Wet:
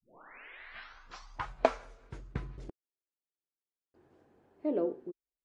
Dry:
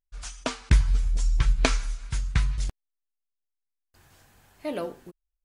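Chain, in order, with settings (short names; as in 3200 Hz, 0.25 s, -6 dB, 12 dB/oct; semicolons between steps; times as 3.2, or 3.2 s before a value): tape start at the beginning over 1.53 s; band-pass sweep 2900 Hz -> 370 Hz, 0.26–2.24; gain +5.5 dB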